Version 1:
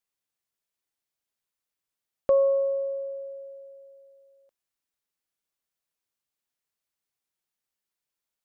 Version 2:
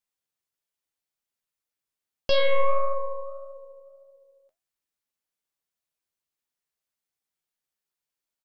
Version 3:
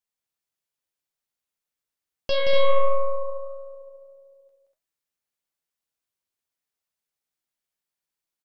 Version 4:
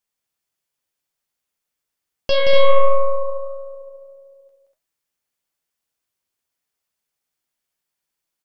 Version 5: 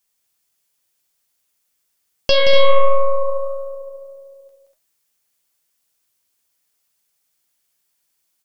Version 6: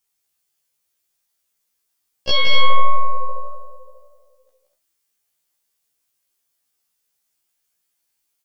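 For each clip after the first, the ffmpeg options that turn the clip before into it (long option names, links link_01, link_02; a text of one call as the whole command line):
ffmpeg -i in.wav -filter_complex "[0:a]aeval=exprs='0.2*(cos(1*acos(clip(val(0)/0.2,-1,1)))-cos(1*PI/2))+0.02*(cos(5*acos(clip(val(0)/0.2,-1,1)))-cos(5*PI/2))+0.1*(cos(8*acos(clip(val(0)/0.2,-1,1)))-cos(8*PI/2))':channel_layout=same,asplit=2[link_01][link_02];[link_02]adelay=13,volume=-11dB[link_03];[link_01][link_03]amix=inputs=2:normalize=0,flanger=delay=6.6:depth=7.3:regen=71:speed=1.7:shape=triangular,volume=-1dB" out.wav
ffmpeg -i in.wav -af "aecho=1:1:174.9|242:0.631|0.501,volume=-2dB" out.wav
ffmpeg -i in.wav -af "bandreject=frequency=3900:width=26,volume=6dB" out.wav
ffmpeg -i in.wav -filter_complex "[0:a]highshelf=frequency=3700:gain=8.5,asplit=2[link_01][link_02];[link_02]acompressor=threshold=-17dB:ratio=6,volume=2dB[link_03];[link_01][link_03]amix=inputs=2:normalize=0,volume=-2.5dB" out.wav
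ffmpeg -i in.wav -af "afftfilt=real='re*1.73*eq(mod(b,3),0)':imag='im*1.73*eq(mod(b,3),0)':win_size=2048:overlap=0.75,volume=-1dB" out.wav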